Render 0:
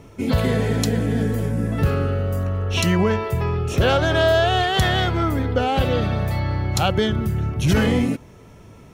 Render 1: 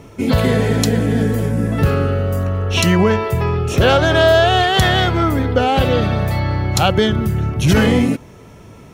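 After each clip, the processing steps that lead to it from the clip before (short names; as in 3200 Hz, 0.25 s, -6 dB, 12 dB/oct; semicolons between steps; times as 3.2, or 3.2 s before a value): low shelf 61 Hz -5.5 dB; gain +5.5 dB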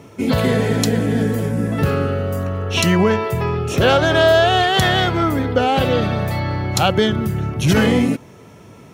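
HPF 100 Hz; gain -1 dB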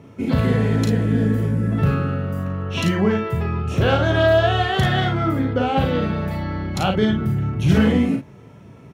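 tone controls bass +6 dB, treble -8 dB; on a send: early reflections 37 ms -5 dB, 52 ms -7 dB; on the sum: gain -6.5 dB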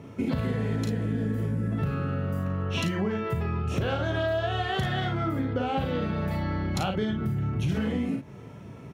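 compressor 6:1, threshold -25 dBFS, peak gain reduction 13.5 dB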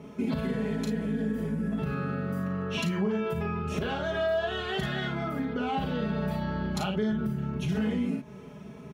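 comb 4.8 ms, depth 97%; in parallel at 0 dB: limiter -20 dBFS, peak gain reduction 7.5 dB; on the sum: gain -9 dB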